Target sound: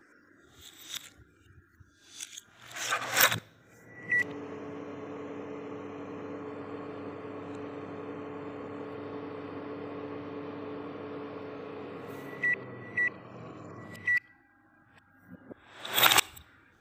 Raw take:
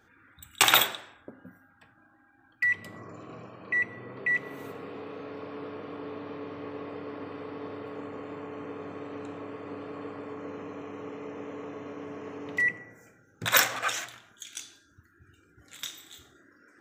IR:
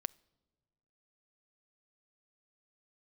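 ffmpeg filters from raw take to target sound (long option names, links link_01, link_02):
-filter_complex "[0:a]areverse,lowshelf=frequency=110:gain=5.5[link_01];[1:a]atrim=start_sample=2205[link_02];[link_01][link_02]afir=irnorm=-1:irlink=0"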